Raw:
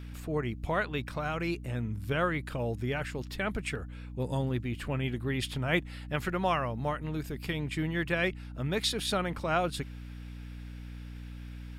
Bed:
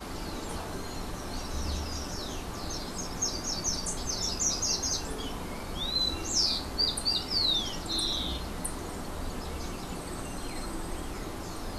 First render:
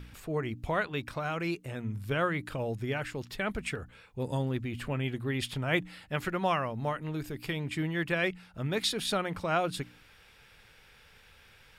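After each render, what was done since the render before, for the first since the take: de-hum 60 Hz, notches 5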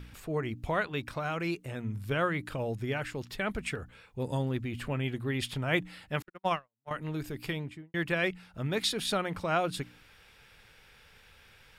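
6.22–6.91 s: gate -28 dBFS, range -56 dB; 7.48–7.94 s: studio fade out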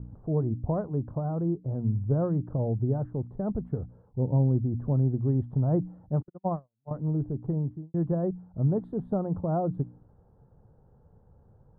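inverse Chebyshev low-pass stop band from 2.2 kHz, stop band 50 dB; peaking EQ 130 Hz +10 dB 2.1 oct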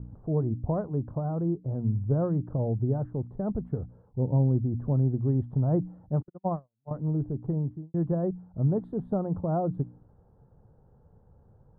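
no audible change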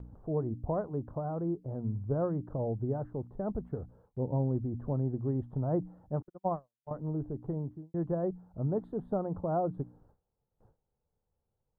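gate with hold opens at -47 dBFS; peaking EQ 130 Hz -8 dB 2.3 oct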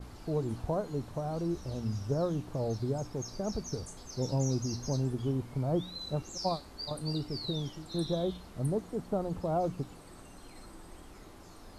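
add bed -14 dB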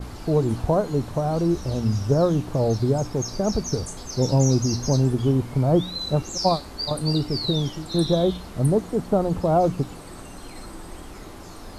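trim +11.5 dB

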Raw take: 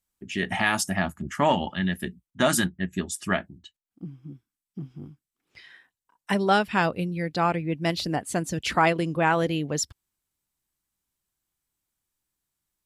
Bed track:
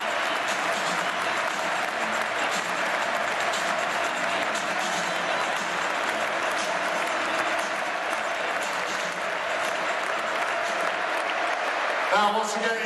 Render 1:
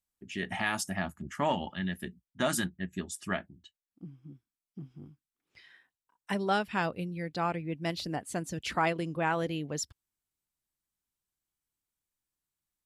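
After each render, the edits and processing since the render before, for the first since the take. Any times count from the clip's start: trim -7.5 dB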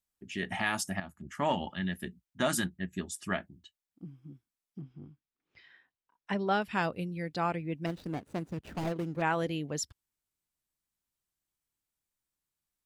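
1.00–1.52 s: fade in, from -12 dB; 4.81–6.62 s: distance through air 130 m; 7.86–9.22 s: median filter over 41 samples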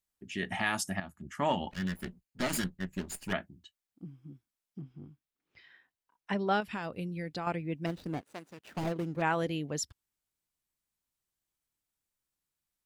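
1.71–3.33 s: comb filter that takes the minimum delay 0.43 ms; 6.60–7.47 s: compression 10:1, threshold -32 dBFS; 8.21–8.77 s: high-pass 1.1 kHz 6 dB/octave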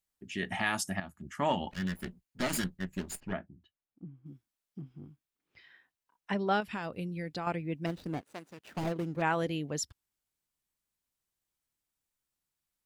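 3.20–4.26 s: tape spacing loss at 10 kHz 40 dB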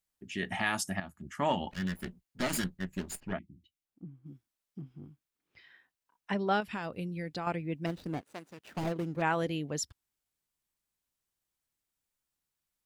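3.39–3.85 s: spectral selection erased 350–1900 Hz

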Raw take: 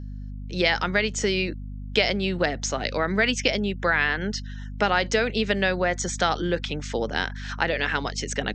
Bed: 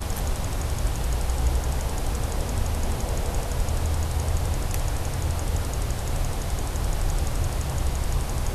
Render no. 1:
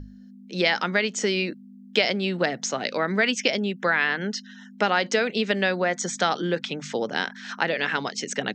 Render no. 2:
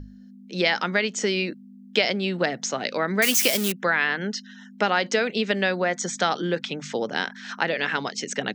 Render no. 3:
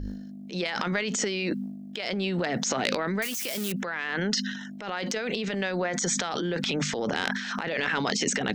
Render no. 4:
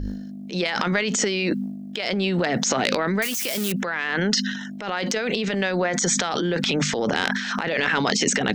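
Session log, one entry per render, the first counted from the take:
hum notches 50/100/150 Hz
3.22–3.72 s: zero-crossing glitches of -14 dBFS
compressor with a negative ratio -29 dBFS, ratio -1; transient shaper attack -7 dB, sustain +10 dB
trim +5.5 dB; peak limiter -3 dBFS, peak gain reduction 2 dB

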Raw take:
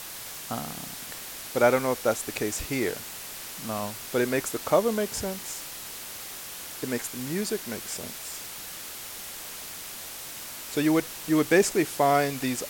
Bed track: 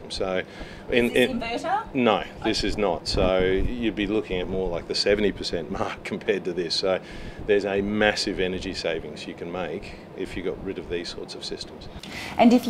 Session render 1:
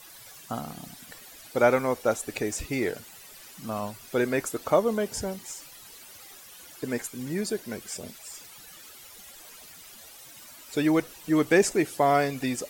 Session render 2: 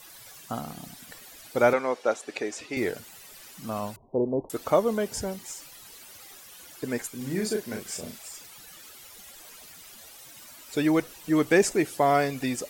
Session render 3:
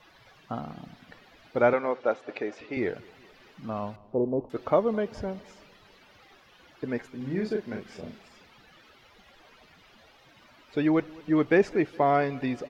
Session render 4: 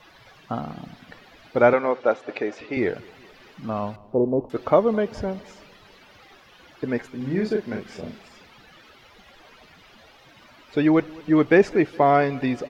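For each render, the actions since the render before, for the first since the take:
noise reduction 13 dB, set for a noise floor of -40 dBFS
1.73–2.77 s: band-pass 310–5600 Hz; 3.96–4.50 s: steep low-pass 1 kHz 96 dB/octave; 7.17–8.29 s: doubling 37 ms -4 dB
distance through air 290 m; feedback delay 209 ms, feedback 55%, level -23.5 dB
trim +5.5 dB

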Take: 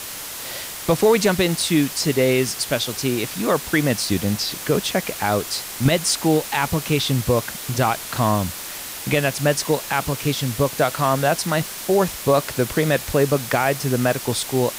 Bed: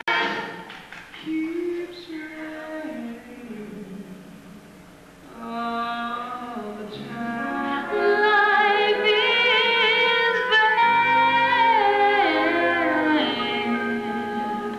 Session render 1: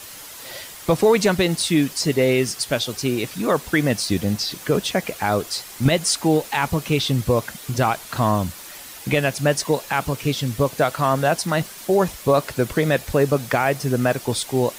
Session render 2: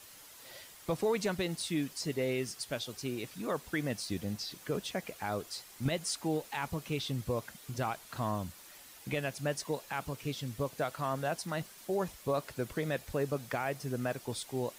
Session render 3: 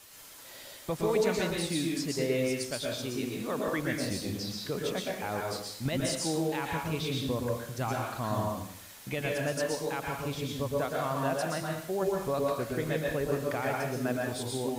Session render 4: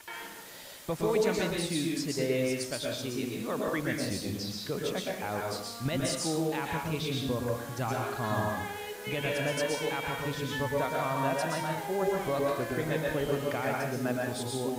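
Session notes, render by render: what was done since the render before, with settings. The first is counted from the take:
noise reduction 8 dB, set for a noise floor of -33 dBFS
trim -15 dB
plate-style reverb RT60 0.67 s, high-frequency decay 0.85×, pre-delay 105 ms, DRR -1.5 dB
add bed -20 dB

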